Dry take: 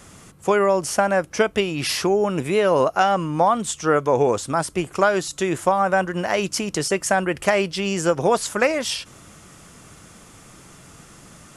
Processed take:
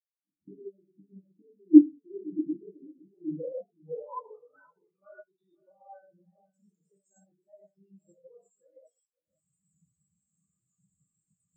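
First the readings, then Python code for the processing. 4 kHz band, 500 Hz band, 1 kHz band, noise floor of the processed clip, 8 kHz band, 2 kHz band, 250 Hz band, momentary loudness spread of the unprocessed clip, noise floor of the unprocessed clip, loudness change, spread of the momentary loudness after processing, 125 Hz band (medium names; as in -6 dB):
under -40 dB, -21.5 dB, -28.5 dB, under -85 dBFS, under -40 dB, under -40 dB, -1.0 dB, 5 LU, -47 dBFS, -4.5 dB, 23 LU, -26.5 dB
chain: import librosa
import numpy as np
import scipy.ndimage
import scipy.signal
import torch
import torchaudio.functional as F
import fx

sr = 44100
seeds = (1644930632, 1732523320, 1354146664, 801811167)

p1 = fx.recorder_agc(x, sr, target_db=-12.5, rise_db_per_s=64.0, max_gain_db=30)
p2 = fx.filter_sweep_lowpass(p1, sr, from_hz=300.0, to_hz=7900.0, start_s=2.97, end_s=6.1, q=5.2)
p3 = p2 + fx.echo_single(p2, sr, ms=516, db=-7.0, dry=0)
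p4 = fx.rev_gated(p3, sr, seeds[0], gate_ms=200, shape='flat', drr_db=-5.0)
p5 = fx.spectral_expand(p4, sr, expansion=4.0)
y = p5 * 10.0 ** (-7.5 / 20.0)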